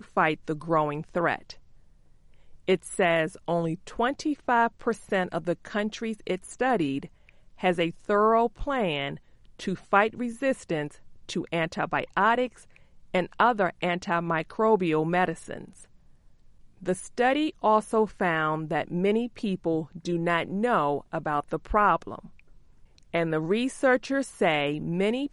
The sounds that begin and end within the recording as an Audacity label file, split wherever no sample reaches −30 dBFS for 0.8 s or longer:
2.690000	15.610000	sound
16.860000	22.190000	sound